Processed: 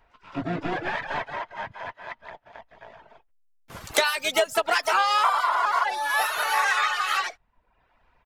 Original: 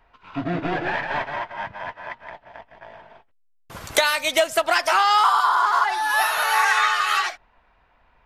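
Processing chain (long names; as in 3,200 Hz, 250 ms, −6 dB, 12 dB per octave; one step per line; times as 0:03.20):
pitch-shifted copies added −7 semitones −14 dB, +5 semitones −17 dB, +12 semitones −18 dB
reverb reduction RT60 0.62 s
level −3 dB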